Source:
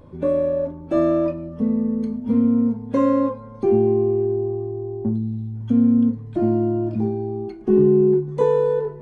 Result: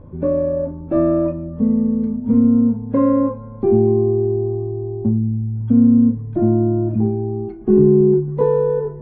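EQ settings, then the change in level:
low-pass filter 1,700 Hz 12 dB per octave
low-shelf EQ 220 Hz +9 dB
0.0 dB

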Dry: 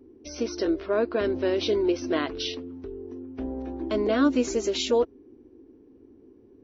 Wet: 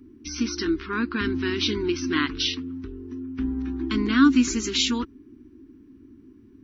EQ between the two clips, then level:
Chebyshev band-stop filter 260–1,300 Hz, order 2
+7.5 dB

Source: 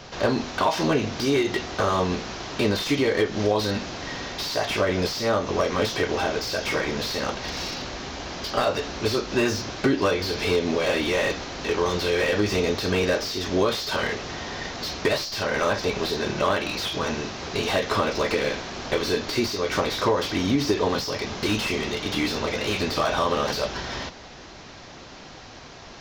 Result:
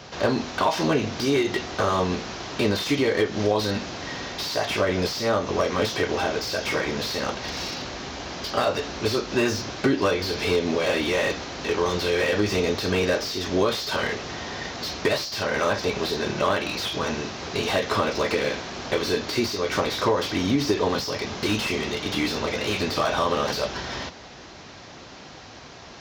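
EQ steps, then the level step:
high-pass filter 55 Hz
0.0 dB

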